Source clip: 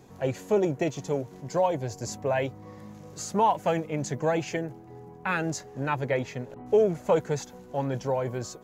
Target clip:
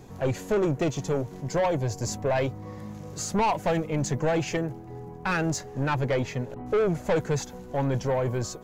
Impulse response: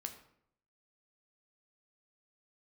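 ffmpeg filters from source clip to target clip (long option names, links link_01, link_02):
-af "asoftclip=type=tanh:threshold=-24dB,lowshelf=frequency=74:gain=11.5,volume=4dB"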